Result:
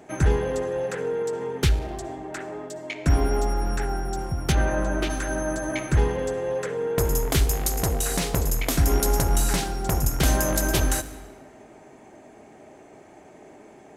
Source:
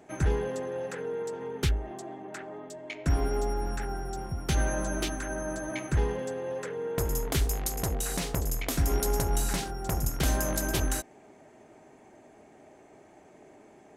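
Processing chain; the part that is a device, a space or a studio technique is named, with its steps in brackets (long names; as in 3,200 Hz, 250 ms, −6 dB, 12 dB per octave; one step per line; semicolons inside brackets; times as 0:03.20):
saturated reverb return (on a send at −11 dB: convolution reverb RT60 1.5 s, pre-delay 52 ms + soft clipping −25.5 dBFS, distortion −14 dB)
0:04.52–0:05.10: on the sum: bass and treble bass −1 dB, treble −12 dB
level +6 dB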